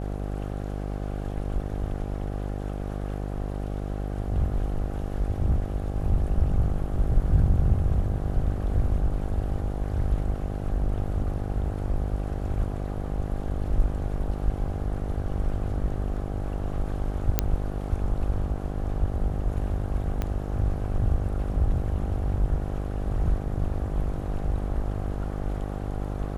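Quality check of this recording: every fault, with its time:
mains buzz 50 Hz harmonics 16 −31 dBFS
0:17.39: click −4 dBFS
0:20.22: click −15 dBFS

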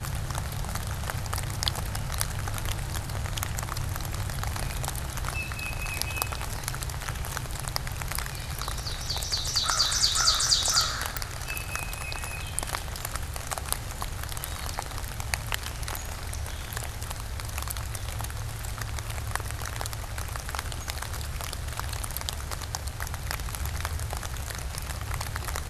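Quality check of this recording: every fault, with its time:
0:11.17: click

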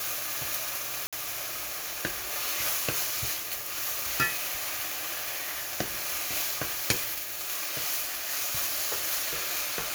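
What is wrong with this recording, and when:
0:01.07–0:01.13: drop-out 56 ms

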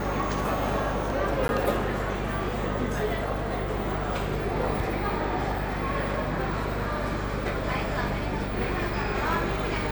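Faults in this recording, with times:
mains hum 50 Hz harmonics 8 −33 dBFS
0:01.48–0:01.49: drop-out 11 ms

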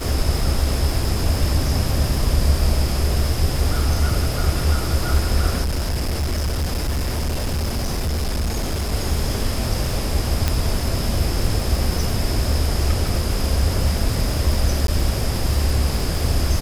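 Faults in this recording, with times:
surface crackle 190 per second −26 dBFS
0:05.62–0:08.94: clipping −18.5 dBFS
0:10.48: click
0:14.87–0:14.88: drop-out 12 ms

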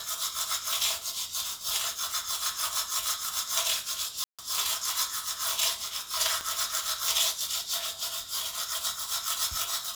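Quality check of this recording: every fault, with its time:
0:04.24–0:04.39: drop-out 146 ms
0:06.41: click −16 dBFS

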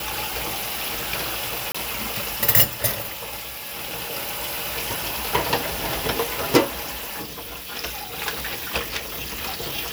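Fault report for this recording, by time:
0:01.72–0:01.75: drop-out 25 ms

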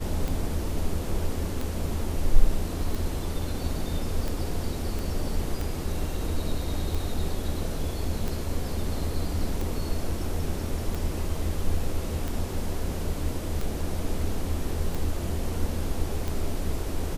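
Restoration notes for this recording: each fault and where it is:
scratch tick 45 rpm
0:04.99: click

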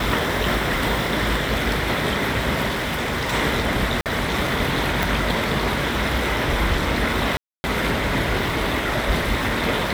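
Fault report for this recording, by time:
0:02.67–0:03.34: clipping −20.5 dBFS
0:04.01–0:04.06: drop-out 48 ms
0:05.03: click
0:07.37–0:07.64: drop-out 270 ms

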